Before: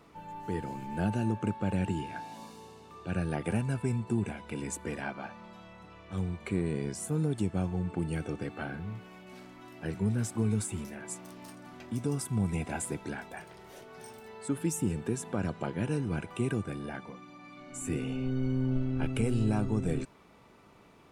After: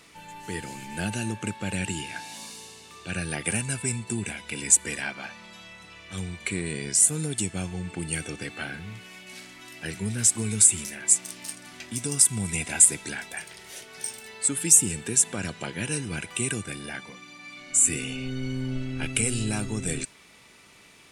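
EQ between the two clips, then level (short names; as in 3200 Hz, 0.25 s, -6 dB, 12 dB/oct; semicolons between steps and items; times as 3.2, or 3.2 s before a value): high shelf 5900 Hz +10.5 dB; dynamic EQ 8000 Hz, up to +5 dB, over -50 dBFS, Q 1.9; band shelf 4200 Hz +12 dB 3 oct; -1.0 dB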